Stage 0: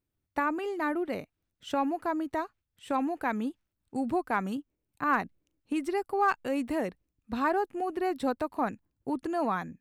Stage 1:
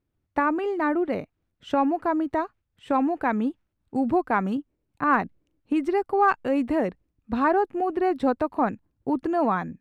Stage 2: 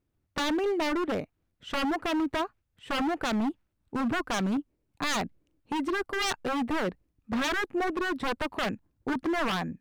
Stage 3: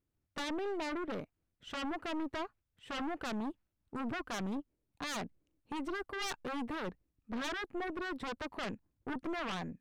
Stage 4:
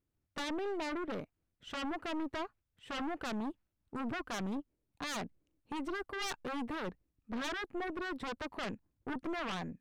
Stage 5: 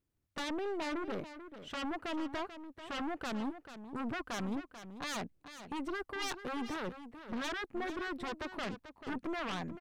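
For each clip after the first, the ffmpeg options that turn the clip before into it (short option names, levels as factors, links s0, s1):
-af "lowpass=f=1700:p=1,volume=2.24"
-af "aeval=exprs='0.0708*(abs(mod(val(0)/0.0708+3,4)-2)-1)':c=same"
-af "aeval=exprs='(tanh(28.2*val(0)+0.5)-tanh(0.5))/28.2':c=same,volume=0.562"
-af anull
-af "aecho=1:1:439:0.266"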